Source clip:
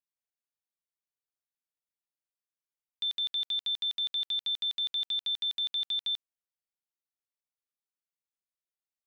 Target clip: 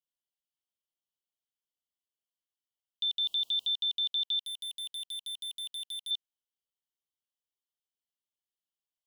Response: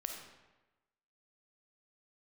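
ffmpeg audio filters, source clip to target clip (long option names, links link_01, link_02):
-filter_complex "[0:a]asettb=1/sr,asplit=3[link_01][link_02][link_03];[link_01]atrim=end=3.204[link_04];[link_02]atrim=start=3.2:end=3.74,asetpts=PTS-STARTPTS,afade=type=in:duration=0.004:curve=qsin,afade=type=out:start_time=0.536:duration=0.004:curve=qsin,aeval=exprs='val(0)+0.5*0.00316*sgn(val(0))':channel_layout=same[link_05];[link_03]atrim=start=3.736[link_06];[link_04][link_05]acrossfade=duration=0.004:curve1=hsin:curve2=qsin[link_07];[link_07][link_06]acrossfade=duration=0.004:curve1=qsin:curve2=hsin,asuperstop=centerf=1800:order=8:qfactor=1,equalizer=frequency=3000:width_type=o:width=0.42:gain=12.5,asettb=1/sr,asplit=3[link_08][link_09][link_10];[link_08]atrim=end=4.394[link_11];[link_09]atrim=start=4.39:end=6.11,asetpts=PTS-STARTPTS,afade=type=in:duration=0.004:curve=qsin,afade=type=out:start_time=1.716:duration=0.004:curve=qsin,asoftclip=type=hard:threshold=-32.5dB[link_12];[link_10]atrim=start=6.106[link_13];[link_11][link_12]acrossfade=duration=0.004:curve1=hsin:curve2=qsin[link_14];[link_14][link_13]acrossfade=duration=0.004:curve1=qsin:curve2=hsin,volume=-4.5dB"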